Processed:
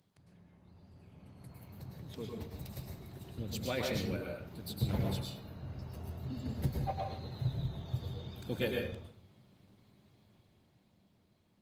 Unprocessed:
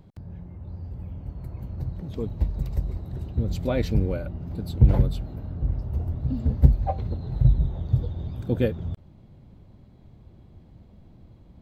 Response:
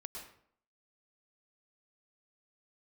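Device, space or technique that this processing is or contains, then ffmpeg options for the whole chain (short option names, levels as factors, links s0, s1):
far-field microphone of a smart speaker: -filter_complex "[0:a]tiltshelf=f=1400:g=-9[s0];[1:a]atrim=start_sample=2205[s1];[s0][s1]afir=irnorm=-1:irlink=0,highpass=f=97:w=0.5412,highpass=f=97:w=1.3066,dynaudnorm=f=120:g=21:m=2.11,volume=0.562" -ar 48000 -c:a libopus -b:a 24k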